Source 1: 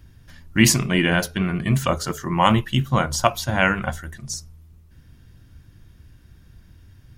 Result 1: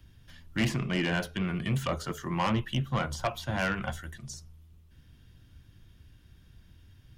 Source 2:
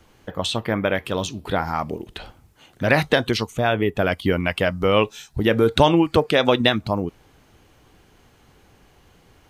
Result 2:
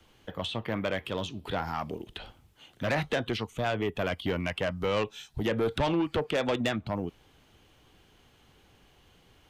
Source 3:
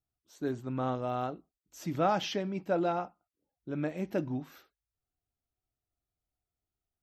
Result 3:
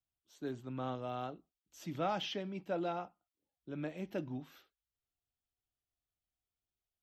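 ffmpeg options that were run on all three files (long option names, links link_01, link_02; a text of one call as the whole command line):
ffmpeg -i in.wav -filter_complex "[0:a]equalizer=frequency=3200:width_type=o:width=0.66:gain=7,acrossover=split=160|870|2600[link_01][link_02][link_03][link_04];[link_04]acompressor=threshold=-35dB:ratio=6[link_05];[link_01][link_02][link_03][link_05]amix=inputs=4:normalize=0,asoftclip=type=tanh:threshold=-14.5dB,volume=-7dB" out.wav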